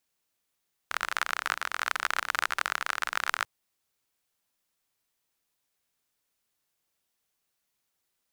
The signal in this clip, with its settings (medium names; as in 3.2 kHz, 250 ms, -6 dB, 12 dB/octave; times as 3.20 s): rain from filtered ticks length 2.54 s, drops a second 38, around 1.4 kHz, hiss -29.5 dB